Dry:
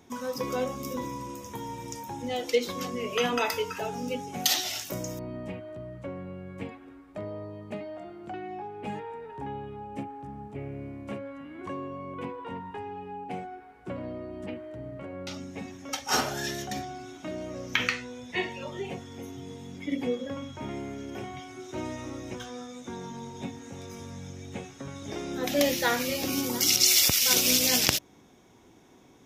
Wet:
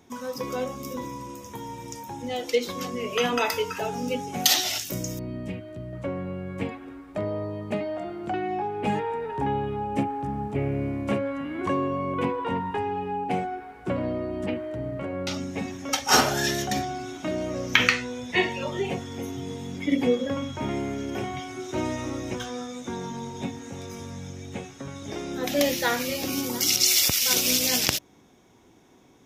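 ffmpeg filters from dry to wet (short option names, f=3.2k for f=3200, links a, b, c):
-filter_complex "[0:a]asettb=1/sr,asplit=3[a][b][c];[a]atrim=end=4.784[d];[b]atrim=start=4.78:end=5.93,asetpts=PTS-STARTPTS,afade=t=in:d=0.004:c=qsin,afade=t=out:st=1.146:d=0.004:c=qsin,equalizer=f=900:t=o:w=1.8:g=-10[e];[c]atrim=start=5.926[f];[d][e]acrossfade=d=0.004:c1=hsin:c2=qsin[g];[g][f]acrossfade=d=0.004:c1=qsin:c2=hsin,dynaudnorm=f=650:g=13:m=11.5dB"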